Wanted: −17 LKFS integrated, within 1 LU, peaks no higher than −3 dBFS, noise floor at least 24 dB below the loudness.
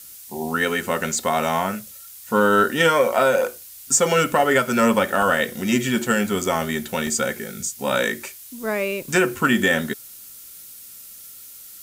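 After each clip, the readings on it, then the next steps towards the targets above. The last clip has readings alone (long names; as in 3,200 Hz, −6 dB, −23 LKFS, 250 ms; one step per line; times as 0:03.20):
number of dropouts 2; longest dropout 2.4 ms; background noise floor −42 dBFS; target noise floor −45 dBFS; integrated loudness −20.5 LKFS; sample peak −5.5 dBFS; target loudness −17.0 LKFS
→ repair the gap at 0:05.22/0:07.07, 2.4 ms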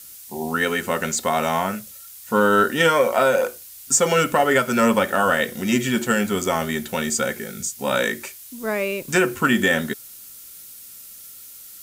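number of dropouts 0; background noise floor −42 dBFS; target noise floor −45 dBFS
→ noise reduction from a noise print 6 dB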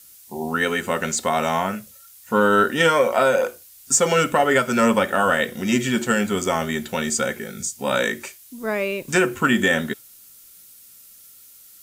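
background noise floor −48 dBFS; integrated loudness −20.5 LKFS; sample peak −5.0 dBFS; target loudness −17.0 LKFS
→ level +3.5 dB
brickwall limiter −3 dBFS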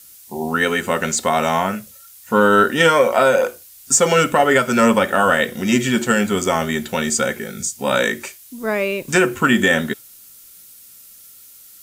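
integrated loudness −17.5 LKFS; sample peak −3.0 dBFS; background noise floor −44 dBFS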